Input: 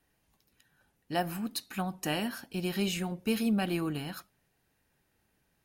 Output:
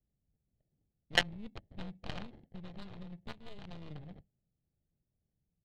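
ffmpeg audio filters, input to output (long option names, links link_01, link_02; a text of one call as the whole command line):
ffmpeg -i in.wav -filter_complex "[0:a]acrusher=samples=36:mix=1:aa=0.000001,asuperstop=centerf=1200:order=20:qfactor=1.5,adynamicsmooth=sensitivity=2.5:basefreq=560,aeval=exprs='0.168*(cos(1*acos(clip(val(0)/0.168,-1,1)))-cos(1*PI/2))+0.0668*(cos(3*acos(clip(val(0)/0.168,-1,1)))-cos(3*PI/2))+0.015*(cos(4*acos(clip(val(0)/0.168,-1,1)))-cos(4*PI/2))':channel_layout=same,firequalizer=gain_entry='entry(170,0);entry(280,-10);entry(4000,9);entry(5700,-1)':delay=0.05:min_phase=1,asettb=1/sr,asplit=3[link_01][link_02][link_03];[link_01]atrim=end=2.234[link_04];[link_02]atrim=start=2.23:end=3.91,asetpts=PTS-STARTPTS,afade=type=in:duration=0.004:curve=qsin,afade=type=out:start_time=1.676:duration=0.004:curve=qsin,acompressor=threshold=-50dB:ratio=8[link_05];[link_03]atrim=start=3.906[link_06];[link_04][link_05]acrossfade=duration=0.004:curve1=hsin:curve2=qsin[link_07];[link_07][link_06]acrossfade=duration=0.004:curve1=qsin:curve2=hsin,volume=8.5dB" out.wav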